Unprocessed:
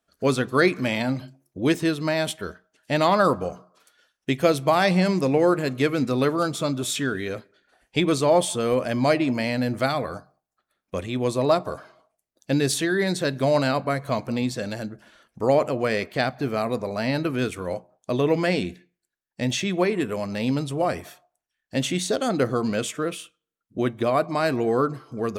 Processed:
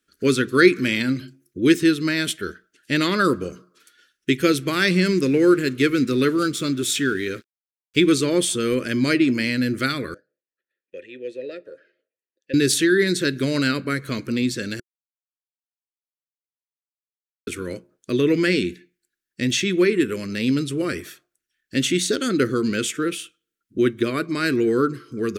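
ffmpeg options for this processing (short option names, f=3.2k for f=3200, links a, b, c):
-filter_complex "[0:a]asettb=1/sr,asplit=3[a][b][c];[a]atrim=end=4.614[d];[b]atrim=start=4.61:end=8.14,asetpts=PTS-STARTPTS,afade=t=in:d=0.004:c=qsin,afade=t=out:st=3.526:d=0.004:c=qsin,aeval=exprs='sgn(val(0))*max(abs(val(0))-0.00376,0)':c=same[e];[c]atrim=start=8.136[f];[d][e]acrossfade=d=0.004:c1=hsin:c2=qsin[g];[g][f]acrossfade=d=0.004:c1=qsin:c2=hsin,asettb=1/sr,asplit=3[h][i][j];[h]atrim=end=10.144[k];[i]atrim=start=10.14:end=12.54,asetpts=PTS-STARTPTS,afade=t=in:d=0.004:c=qsin,afade=t=out:st=2.396:d=0.004:c=qsin,asplit=3[l][m][n];[l]bandpass=f=530:t=q:w=8,volume=0dB[o];[m]bandpass=f=1.84k:t=q:w=8,volume=-6dB[p];[n]bandpass=f=2.48k:t=q:w=8,volume=-9dB[q];[o][p][q]amix=inputs=3:normalize=0[r];[j]atrim=start=12.536[s];[k][r]acrossfade=d=0.004:c1=hsin:c2=qsin[t];[t][s]acrossfade=d=0.004:c1=qsin:c2=hsin,asplit=3[u][v][w];[u]atrim=end=14.8,asetpts=PTS-STARTPTS,afade=t=out:st=14.796:d=0.004:c=hsin[x];[v]atrim=start=14.8:end=17.47,asetpts=PTS-STARTPTS,volume=0[y];[w]atrim=start=17.47,asetpts=PTS-STARTPTS,afade=t=in:d=0.004:c=hsin[z];[x][y][z]concat=n=3:v=0:a=1,firequalizer=gain_entry='entry(160,0);entry(360,8);entry(730,-21);entry(1400,5)':delay=0.05:min_phase=1"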